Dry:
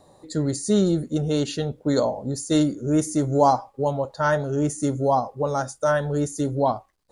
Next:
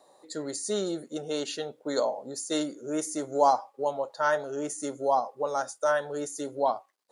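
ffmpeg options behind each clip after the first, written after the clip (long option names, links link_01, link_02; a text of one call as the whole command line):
ffmpeg -i in.wav -af "highpass=450,volume=-3dB" out.wav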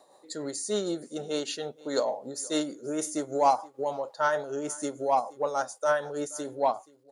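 ffmpeg -i in.wav -filter_complex "[0:a]tremolo=f=6.6:d=0.42,asplit=2[link_01][link_02];[link_02]asoftclip=type=tanh:threshold=-20.5dB,volume=-4.5dB[link_03];[link_01][link_03]amix=inputs=2:normalize=0,aecho=1:1:476:0.0708,volume=-2dB" out.wav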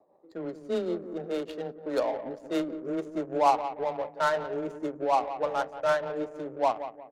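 ffmpeg -i in.wav -filter_complex "[0:a]afreqshift=13,asplit=2[link_01][link_02];[link_02]adelay=179,lowpass=frequency=1200:poles=1,volume=-10dB,asplit=2[link_03][link_04];[link_04]adelay=179,lowpass=frequency=1200:poles=1,volume=0.42,asplit=2[link_05][link_06];[link_06]adelay=179,lowpass=frequency=1200:poles=1,volume=0.42,asplit=2[link_07][link_08];[link_08]adelay=179,lowpass=frequency=1200:poles=1,volume=0.42[link_09];[link_01][link_03][link_05][link_07][link_09]amix=inputs=5:normalize=0,adynamicsmooth=sensitivity=3.5:basefreq=550" out.wav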